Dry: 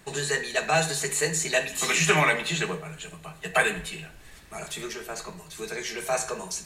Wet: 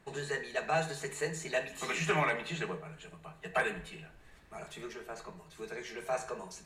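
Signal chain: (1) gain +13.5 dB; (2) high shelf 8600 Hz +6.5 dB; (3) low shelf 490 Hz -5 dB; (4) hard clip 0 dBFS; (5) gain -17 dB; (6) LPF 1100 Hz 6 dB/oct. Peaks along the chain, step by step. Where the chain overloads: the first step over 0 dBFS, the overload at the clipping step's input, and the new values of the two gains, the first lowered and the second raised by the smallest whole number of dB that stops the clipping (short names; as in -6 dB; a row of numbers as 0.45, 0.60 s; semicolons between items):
+7.5, +7.5, +6.5, 0.0, -17.0, -18.5 dBFS; step 1, 6.5 dB; step 1 +6.5 dB, step 5 -10 dB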